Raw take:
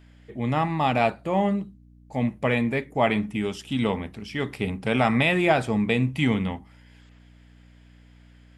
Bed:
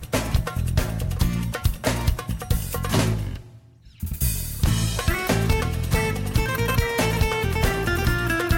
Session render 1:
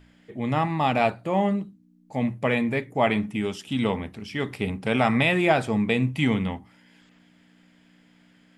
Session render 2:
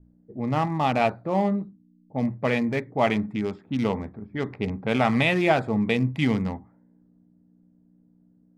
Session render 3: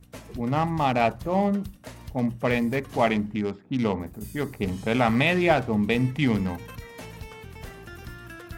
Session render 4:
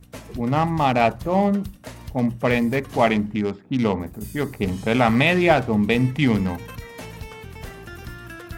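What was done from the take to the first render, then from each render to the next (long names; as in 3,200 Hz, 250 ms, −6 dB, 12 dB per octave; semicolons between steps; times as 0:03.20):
hum removal 60 Hz, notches 2
adaptive Wiener filter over 15 samples; low-pass that shuts in the quiet parts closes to 310 Hz, open at −22 dBFS
mix in bed −19 dB
level +4 dB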